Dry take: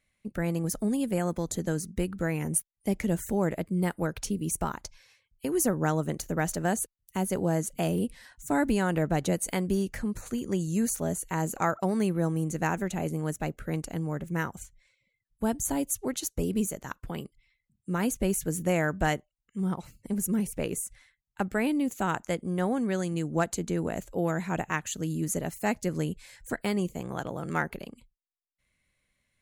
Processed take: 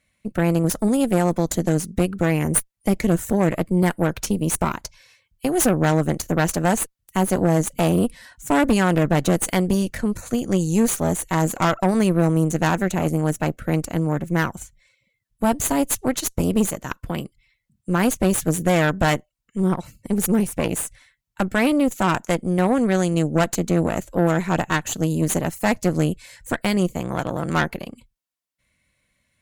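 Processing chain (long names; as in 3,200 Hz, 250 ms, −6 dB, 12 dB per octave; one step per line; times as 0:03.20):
notch comb filter 410 Hz
harmonic generator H 8 −18 dB, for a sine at −12 dBFS
level +8 dB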